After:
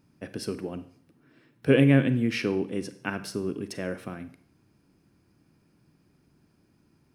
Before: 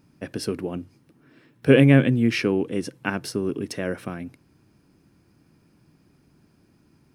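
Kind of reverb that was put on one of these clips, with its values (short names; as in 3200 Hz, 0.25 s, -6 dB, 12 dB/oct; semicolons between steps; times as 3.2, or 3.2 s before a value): Schroeder reverb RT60 0.56 s, combs from 32 ms, DRR 12 dB; gain -5 dB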